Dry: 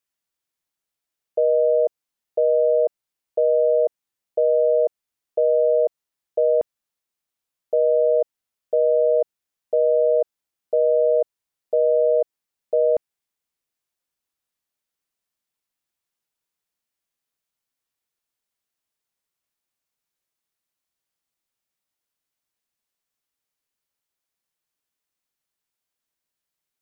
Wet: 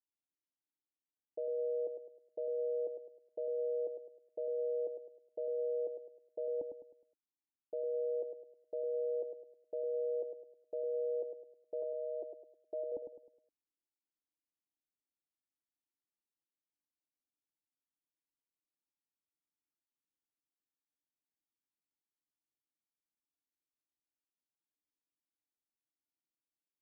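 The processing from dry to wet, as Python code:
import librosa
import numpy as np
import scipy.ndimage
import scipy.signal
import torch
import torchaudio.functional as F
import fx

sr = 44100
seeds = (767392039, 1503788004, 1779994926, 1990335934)

y = fx.formant_cascade(x, sr, vowel='u')
y = fx.comb(y, sr, ms=3.0, depth=0.68, at=(11.82, 12.92))
y = fx.echo_feedback(y, sr, ms=104, feedback_pct=39, wet_db=-7.0)
y = y * 10.0 ** (-3.5 / 20.0)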